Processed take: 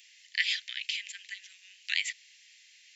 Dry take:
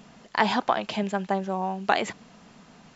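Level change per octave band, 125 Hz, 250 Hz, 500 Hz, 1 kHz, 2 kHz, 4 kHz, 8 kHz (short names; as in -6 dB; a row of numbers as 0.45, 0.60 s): under -40 dB, under -40 dB, under -40 dB, under -40 dB, -2.0 dB, +3.0 dB, n/a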